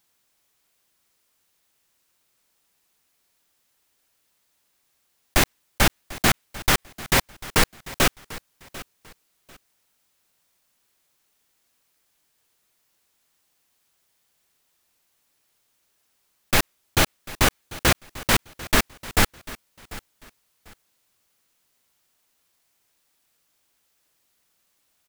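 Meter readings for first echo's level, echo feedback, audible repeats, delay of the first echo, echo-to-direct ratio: -18.5 dB, 25%, 2, 0.744 s, -18.0 dB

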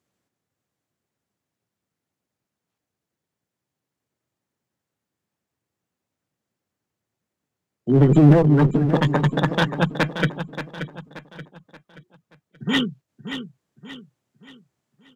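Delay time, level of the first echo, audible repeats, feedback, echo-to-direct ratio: 0.579 s, -10.0 dB, 4, 40%, -9.5 dB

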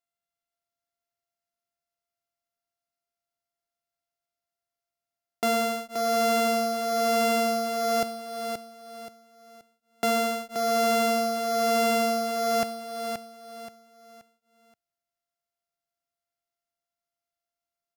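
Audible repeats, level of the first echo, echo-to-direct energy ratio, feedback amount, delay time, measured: 3, -6.5 dB, -6.0 dB, 33%, 0.527 s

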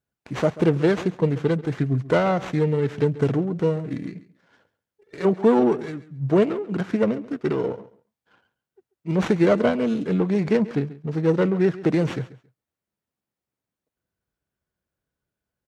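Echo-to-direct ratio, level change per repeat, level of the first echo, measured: -17.5 dB, -15.0 dB, -17.5 dB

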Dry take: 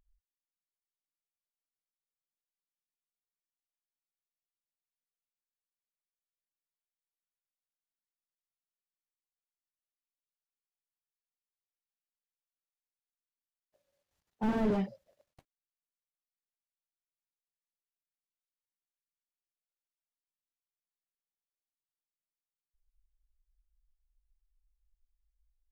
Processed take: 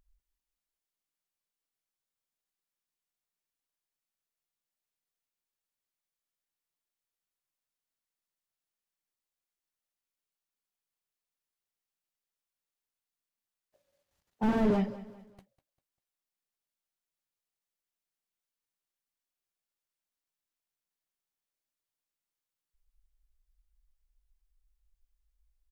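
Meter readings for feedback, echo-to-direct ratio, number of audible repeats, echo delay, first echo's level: 38%, -16.5 dB, 3, 0.198 s, -17.0 dB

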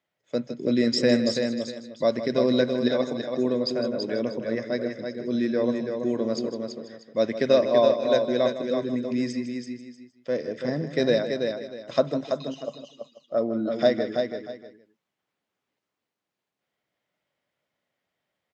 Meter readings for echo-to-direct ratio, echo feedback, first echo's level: -4.0 dB, no steady repeat, -12.0 dB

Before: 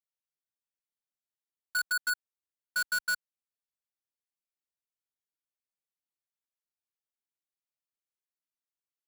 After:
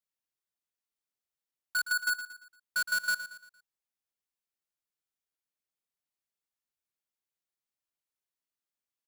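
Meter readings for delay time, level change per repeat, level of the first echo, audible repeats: 0.115 s, -7.5 dB, -12.0 dB, 3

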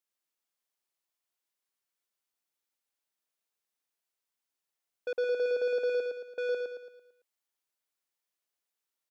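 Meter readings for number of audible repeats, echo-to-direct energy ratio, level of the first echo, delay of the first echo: 5, -3.0 dB, -4.0 dB, 0.112 s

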